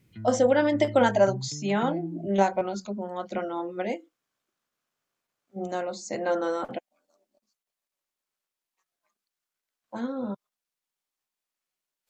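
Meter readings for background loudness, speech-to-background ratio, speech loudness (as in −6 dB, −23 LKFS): −39.5 LKFS, 12.5 dB, −27.0 LKFS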